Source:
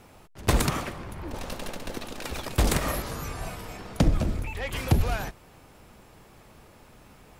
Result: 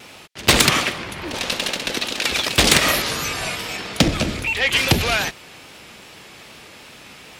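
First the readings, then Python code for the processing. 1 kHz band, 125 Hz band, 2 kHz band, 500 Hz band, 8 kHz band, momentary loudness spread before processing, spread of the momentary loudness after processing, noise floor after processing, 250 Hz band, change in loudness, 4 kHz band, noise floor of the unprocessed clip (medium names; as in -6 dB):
+8.5 dB, +1.5 dB, +16.0 dB, +8.0 dB, +13.5 dB, 12 LU, 12 LU, -43 dBFS, +6.5 dB, +10.5 dB, +19.0 dB, -54 dBFS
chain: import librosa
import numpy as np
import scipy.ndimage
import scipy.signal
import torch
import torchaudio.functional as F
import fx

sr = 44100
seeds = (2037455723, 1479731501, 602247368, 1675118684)

y = fx.weighting(x, sr, curve='D')
y = fx.vibrato(y, sr, rate_hz=2.5, depth_cents=46.0)
y = np.clip(y, -10.0 ** (-13.5 / 20.0), 10.0 ** (-13.5 / 20.0))
y = F.gain(torch.from_numpy(y), 8.5).numpy()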